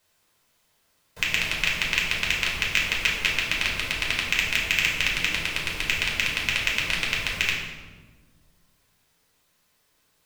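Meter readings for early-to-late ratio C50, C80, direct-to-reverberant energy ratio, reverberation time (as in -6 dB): 3.0 dB, 5.5 dB, -3.0 dB, 1.4 s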